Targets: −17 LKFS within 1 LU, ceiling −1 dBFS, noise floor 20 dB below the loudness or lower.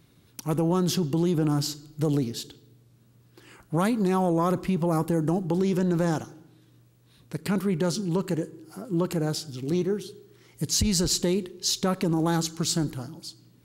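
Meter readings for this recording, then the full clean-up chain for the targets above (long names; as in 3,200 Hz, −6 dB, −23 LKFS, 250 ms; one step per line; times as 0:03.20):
integrated loudness −26.5 LKFS; sample peak −11.0 dBFS; target loudness −17.0 LKFS
→ level +9.5 dB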